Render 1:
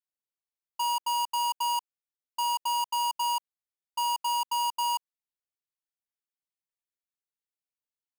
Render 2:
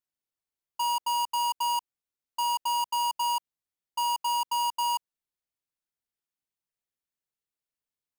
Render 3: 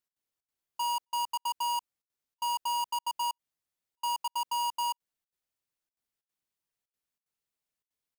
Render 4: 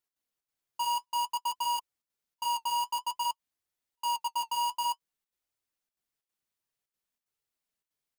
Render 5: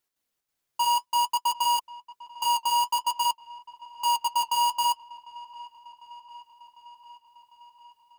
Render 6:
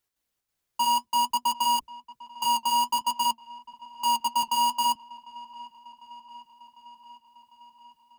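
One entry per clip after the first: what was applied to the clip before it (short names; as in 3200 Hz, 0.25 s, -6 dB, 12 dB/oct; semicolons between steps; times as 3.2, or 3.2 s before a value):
low shelf 370 Hz +5.5 dB
limiter -29.5 dBFS, peak gain reduction 5 dB; step gate "x.xxx.xxxxxx" 186 bpm -60 dB; gain +2 dB
flange 0.54 Hz, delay 2 ms, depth 7.5 ms, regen -48%; gain +4.5 dB
dark delay 0.75 s, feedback 68%, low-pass 3200 Hz, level -19 dB; gain +6.5 dB
octaver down 2 oct, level 0 dB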